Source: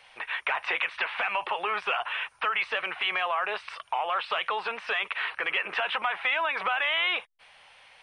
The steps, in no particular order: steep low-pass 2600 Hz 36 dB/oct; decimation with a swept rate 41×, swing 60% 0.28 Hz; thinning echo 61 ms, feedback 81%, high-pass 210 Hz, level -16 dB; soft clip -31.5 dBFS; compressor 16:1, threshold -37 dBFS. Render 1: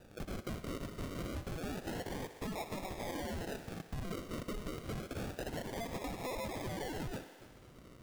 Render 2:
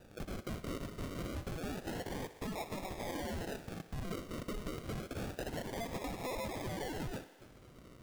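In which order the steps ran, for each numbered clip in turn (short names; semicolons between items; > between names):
soft clip > steep low-pass > decimation with a swept rate > thinning echo > compressor; soft clip > steep low-pass > compressor > decimation with a swept rate > thinning echo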